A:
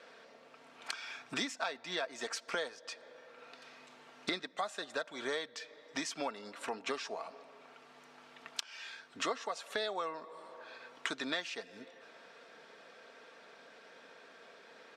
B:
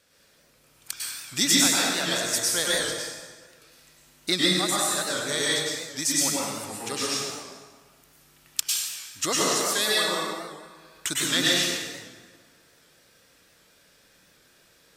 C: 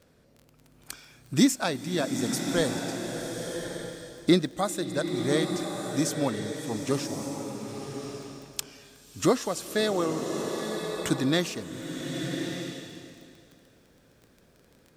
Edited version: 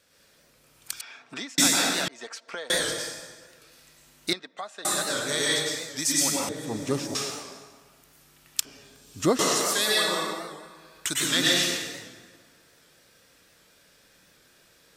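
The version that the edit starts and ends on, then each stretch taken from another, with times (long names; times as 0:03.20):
B
0:01.01–0:01.58: punch in from A
0:02.08–0:02.70: punch in from A
0:04.33–0:04.85: punch in from A
0:06.49–0:07.15: punch in from C
0:08.65–0:09.39: punch in from C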